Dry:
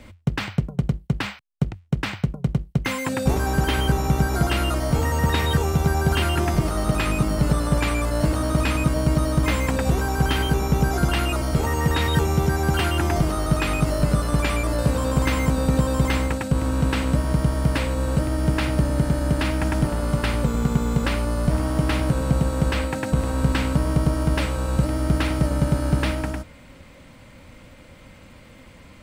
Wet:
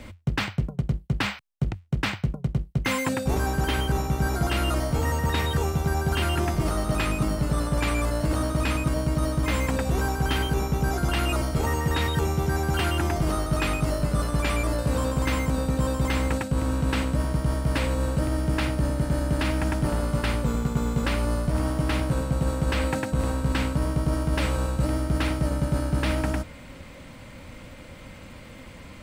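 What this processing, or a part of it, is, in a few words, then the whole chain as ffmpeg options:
compression on the reversed sound: -af "areverse,acompressor=threshold=-24dB:ratio=6,areverse,volume=3dB"

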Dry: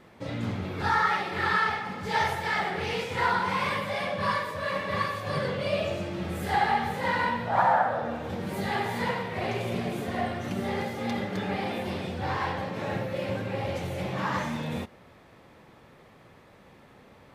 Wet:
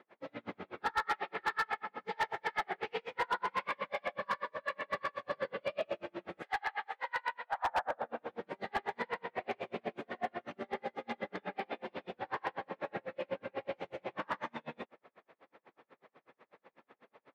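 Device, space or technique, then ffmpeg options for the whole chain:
helicopter radio: -filter_complex "[0:a]asettb=1/sr,asplit=3[a][b][c];[a]atrim=end=6.424[d];[b]atrim=start=6.42:end=7.69,asetpts=PTS-STARTPTS,afade=t=in:d=0.004:c=qsin,afade=t=out:st=1.266:d=0.004:c=qsin,highpass=840[e];[c]atrim=start=7.686[f];[d][e]acrossfade=d=0.004:c1=hsin:c2=qsin[g];[g][f]acrossfade=d=0.004:c1=qsin:c2=hsin,highpass=360,lowpass=2.6k,aeval=exprs='val(0)*pow(10,-39*(0.5-0.5*cos(2*PI*8.1*n/s))/20)':c=same,asoftclip=type=hard:threshold=-26dB"

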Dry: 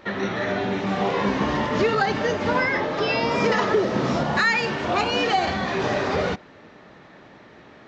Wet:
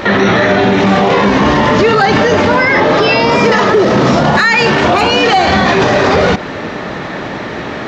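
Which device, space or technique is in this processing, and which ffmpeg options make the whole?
loud club master: -af "acompressor=threshold=-28dB:ratio=1.5,asoftclip=type=hard:threshold=-15.5dB,alimiter=level_in=27dB:limit=-1dB:release=50:level=0:latency=1,volume=-1dB"

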